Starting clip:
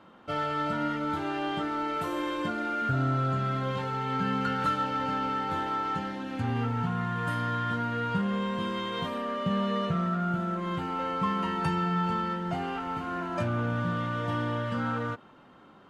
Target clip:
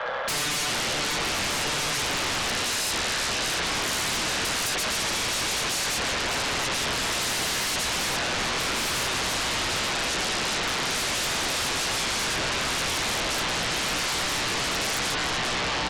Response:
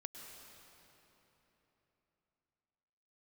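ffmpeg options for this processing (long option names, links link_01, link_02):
-filter_complex "[0:a]asplit=2[link_01][link_02];[1:a]atrim=start_sample=2205[link_03];[link_02][link_03]afir=irnorm=-1:irlink=0,volume=-1.5dB[link_04];[link_01][link_04]amix=inputs=2:normalize=0,highpass=frequency=170:width_type=q:width=0.5412,highpass=frequency=170:width_type=q:width=1.307,lowpass=frequency=3300:width_type=q:width=0.5176,lowpass=frequency=3300:width_type=q:width=0.7071,lowpass=frequency=3300:width_type=q:width=1.932,afreqshift=300,asplit=2[link_05][link_06];[link_06]adelay=1166,volume=-9dB,highshelf=frequency=4000:gain=-26.2[link_07];[link_05][link_07]amix=inputs=2:normalize=0,acompressor=threshold=-34dB:ratio=12,tremolo=f=130:d=0.462,aeval=exprs='0.0398*sin(PI/2*7.94*val(0)/0.0398)':channel_layout=same,volume=4dB"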